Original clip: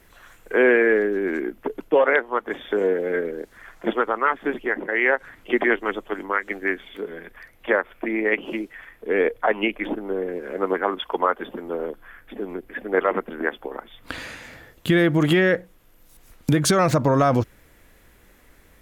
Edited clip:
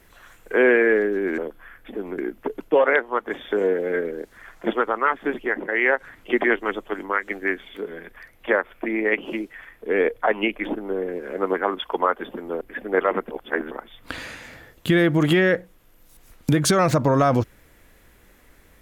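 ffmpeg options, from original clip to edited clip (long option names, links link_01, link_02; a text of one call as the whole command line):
ffmpeg -i in.wav -filter_complex "[0:a]asplit=6[link_01][link_02][link_03][link_04][link_05][link_06];[link_01]atrim=end=1.382[link_07];[link_02]atrim=start=11.808:end=12.612[link_08];[link_03]atrim=start=1.378:end=11.812[link_09];[link_04]atrim=start=12.608:end=13.312[link_10];[link_05]atrim=start=13.308:end=13.712,asetpts=PTS-STARTPTS,areverse[link_11];[link_06]atrim=start=13.708[link_12];[link_07][link_08]acrossfade=duration=0.004:curve1=hsin:curve2=hsin[link_13];[link_13][link_09]acrossfade=duration=0.004:curve1=hsin:curve2=hsin[link_14];[link_14][link_10]acrossfade=duration=0.004:curve1=hsin:curve2=hsin[link_15];[link_15][link_11]acrossfade=duration=0.004:curve1=hsin:curve2=hsin[link_16];[link_16][link_12]acrossfade=duration=0.004:curve1=hsin:curve2=hsin" out.wav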